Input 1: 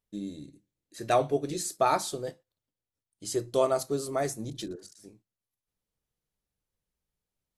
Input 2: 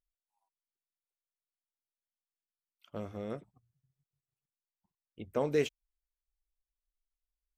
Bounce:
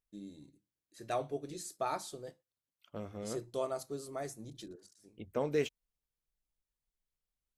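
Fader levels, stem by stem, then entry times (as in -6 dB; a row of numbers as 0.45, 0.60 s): -11.0, -2.5 dB; 0.00, 0.00 s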